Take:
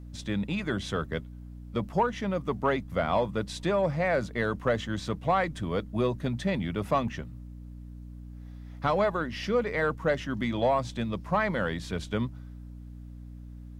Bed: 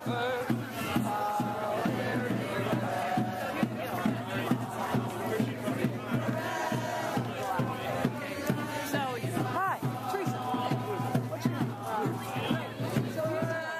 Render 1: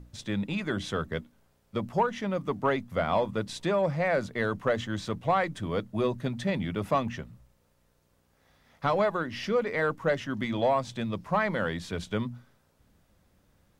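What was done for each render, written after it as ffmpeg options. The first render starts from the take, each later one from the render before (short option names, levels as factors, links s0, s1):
-af "bandreject=f=60:t=h:w=6,bandreject=f=120:t=h:w=6,bandreject=f=180:t=h:w=6,bandreject=f=240:t=h:w=6,bandreject=f=300:t=h:w=6"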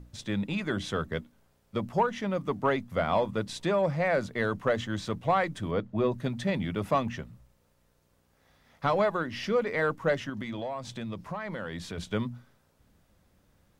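-filter_complex "[0:a]asettb=1/sr,asplit=3[s0][s1][s2];[s0]atrim=end=5.714[s3];[s1]atrim=start=5.71:end=6.12,asetpts=PTS-STARTPTS,afade=t=in:d=0.004:c=qsin,afade=t=out:st=0.406:d=0.004:c=qsin,aemphasis=mode=reproduction:type=75fm[s4];[s2]atrim=start=6.116[s5];[s3][s4]acrossfade=d=0.004:c1=hsin:c2=qsin[s6];[s6][s5]acrossfade=d=0.004:c1=qsin:c2=hsin,asettb=1/sr,asplit=3[s7][s8][s9];[s7]atrim=end=10.294[s10];[s8]atrim=start=10.29:end=11.98,asetpts=PTS-STARTPTS,afade=t=in:d=0.004:c=qsin,afade=t=out:st=1.686:d=0.004:c=qsin,acompressor=threshold=0.0251:ratio=5:attack=3.2:release=140:knee=1:detection=peak[s11];[s9]atrim=start=11.976[s12];[s10][s11]acrossfade=d=0.004:c1=hsin:c2=qsin[s13];[s13][s12]acrossfade=d=0.004:c1=qsin:c2=hsin"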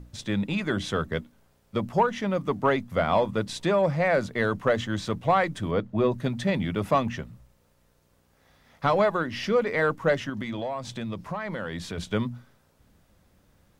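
-af "volume=1.5"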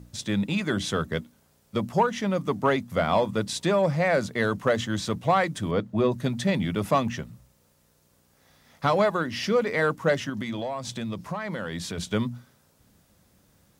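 -af "highpass=f=150:p=1,bass=f=250:g=5,treble=f=4000:g=7"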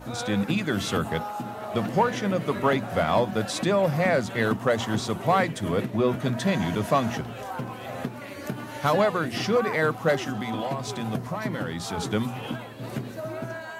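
-filter_complex "[1:a]volume=0.75[s0];[0:a][s0]amix=inputs=2:normalize=0"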